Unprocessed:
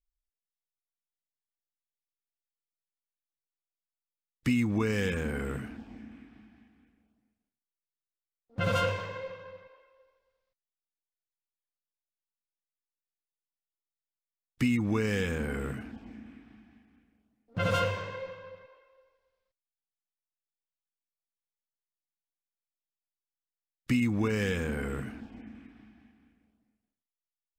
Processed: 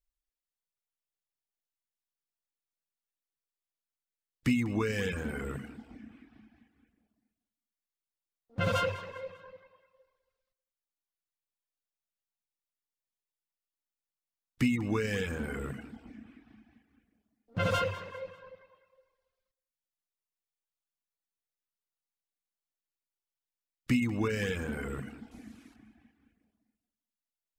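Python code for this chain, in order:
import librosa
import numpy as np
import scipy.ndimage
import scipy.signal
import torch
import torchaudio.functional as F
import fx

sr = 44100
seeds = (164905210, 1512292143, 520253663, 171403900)

p1 = fx.delta_mod(x, sr, bps=64000, step_db=-54.0, at=(25.31, 25.76))
p2 = fx.dereverb_blind(p1, sr, rt60_s=0.85)
y = p2 + fx.echo_feedback(p2, sr, ms=198, feedback_pct=38, wet_db=-17.0, dry=0)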